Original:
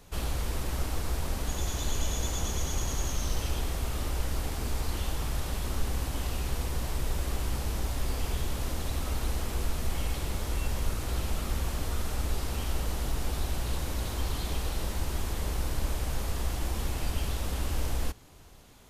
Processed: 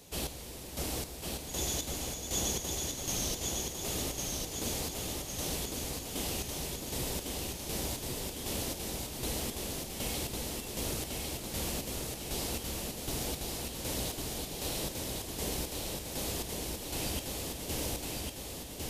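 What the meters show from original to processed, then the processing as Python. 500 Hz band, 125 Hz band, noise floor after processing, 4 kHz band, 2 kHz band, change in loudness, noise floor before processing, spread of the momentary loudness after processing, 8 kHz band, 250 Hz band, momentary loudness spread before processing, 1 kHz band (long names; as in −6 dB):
+0.5 dB, −8.5 dB, −43 dBFS, +2.0 dB, −3.0 dB, −2.0 dB, −37 dBFS, 4 LU, +4.0 dB, −0.5 dB, 2 LU, −4.0 dB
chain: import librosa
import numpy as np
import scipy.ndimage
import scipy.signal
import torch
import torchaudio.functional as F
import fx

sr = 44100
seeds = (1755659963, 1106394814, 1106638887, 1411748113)

y = fx.highpass(x, sr, hz=300.0, slope=6)
y = fx.peak_eq(y, sr, hz=1300.0, db=-12.5, octaves=1.4)
y = fx.chopper(y, sr, hz=1.3, depth_pct=65, duty_pct=35)
y = fx.echo_feedback(y, sr, ms=1103, feedback_pct=58, wet_db=-3.0)
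y = y * 10.0 ** (5.5 / 20.0)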